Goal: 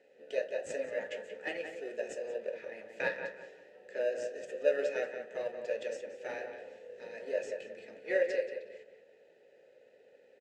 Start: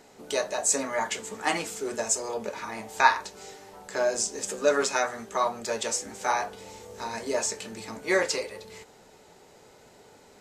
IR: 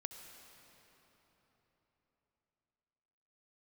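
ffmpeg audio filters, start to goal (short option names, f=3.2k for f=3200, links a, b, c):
-filter_complex "[0:a]asplit=2[a][b];[b]acrusher=samples=40:mix=1:aa=0.000001,volume=-7dB[c];[a][c]amix=inputs=2:normalize=0,asplit=3[d][e][f];[d]bandpass=f=530:t=q:w=8,volume=0dB[g];[e]bandpass=f=1.84k:t=q:w=8,volume=-6dB[h];[f]bandpass=f=2.48k:t=q:w=8,volume=-9dB[i];[g][h][i]amix=inputs=3:normalize=0,asplit=2[j][k];[k]adelay=180,lowpass=f=2.4k:p=1,volume=-6.5dB,asplit=2[l][m];[m]adelay=180,lowpass=f=2.4k:p=1,volume=0.32,asplit=2[n][o];[o]adelay=180,lowpass=f=2.4k:p=1,volume=0.32,asplit=2[p][q];[q]adelay=180,lowpass=f=2.4k:p=1,volume=0.32[r];[j][l][n][p][r]amix=inputs=5:normalize=0"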